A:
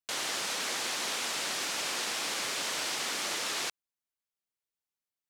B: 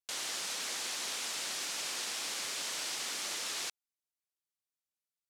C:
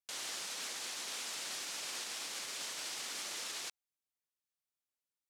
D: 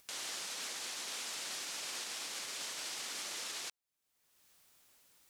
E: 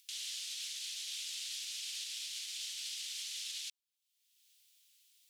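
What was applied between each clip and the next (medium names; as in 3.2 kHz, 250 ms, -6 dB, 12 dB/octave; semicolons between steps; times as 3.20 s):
peaking EQ 8.3 kHz +6.5 dB 2.8 oct; trim -8.5 dB
peak limiter -29.5 dBFS, peak gain reduction 4.5 dB; trim -2.5 dB
upward compressor, threshold -46 dBFS
ladder high-pass 2.6 kHz, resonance 40%; trim +6 dB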